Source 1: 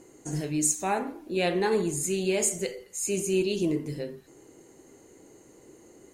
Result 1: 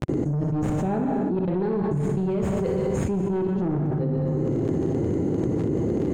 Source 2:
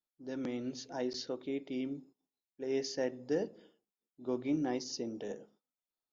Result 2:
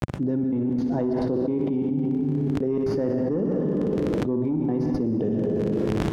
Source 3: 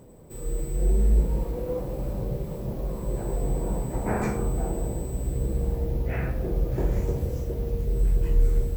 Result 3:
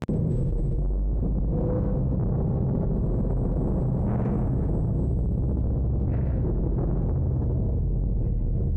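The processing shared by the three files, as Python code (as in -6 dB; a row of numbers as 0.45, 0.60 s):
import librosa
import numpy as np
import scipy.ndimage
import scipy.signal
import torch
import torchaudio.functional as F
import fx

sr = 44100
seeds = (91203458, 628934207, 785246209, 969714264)

y = fx.tracing_dist(x, sr, depth_ms=0.083)
y = fx.rider(y, sr, range_db=4, speed_s=2.0)
y = fx.step_gate(y, sr, bpm=173, pattern='.xxxx.xx', floor_db=-60.0, edge_ms=4.5)
y = fx.dmg_crackle(y, sr, seeds[0], per_s=24.0, level_db=-37.0)
y = fx.bandpass_q(y, sr, hz=120.0, q=1.2)
y = 10.0 ** (-34.0 / 20.0) * np.tanh(y / 10.0 ** (-34.0 / 20.0))
y = fx.echo_feedback(y, sr, ms=61, feedback_pct=54, wet_db=-9.5)
y = fx.rev_plate(y, sr, seeds[1], rt60_s=1.3, hf_ratio=0.75, predelay_ms=105, drr_db=7.5)
y = fx.env_flatten(y, sr, amount_pct=100)
y = y * 10.0 ** (-24 / 20.0) / np.sqrt(np.mean(np.square(y)))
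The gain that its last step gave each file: +9.5, +15.5, +6.5 dB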